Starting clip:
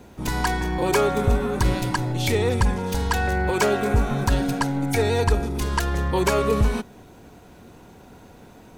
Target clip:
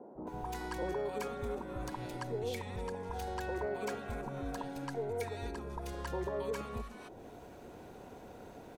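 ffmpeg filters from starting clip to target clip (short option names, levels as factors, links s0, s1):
-filter_complex "[0:a]acompressor=threshold=0.0224:ratio=5,equalizer=f=620:w=0.53:g=9,acrossover=split=190|1000[s0][s1][s2];[s0]adelay=150[s3];[s2]adelay=270[s4];[s3][s1][s4]amix=inputs=3:normalize=0,volume=0.398"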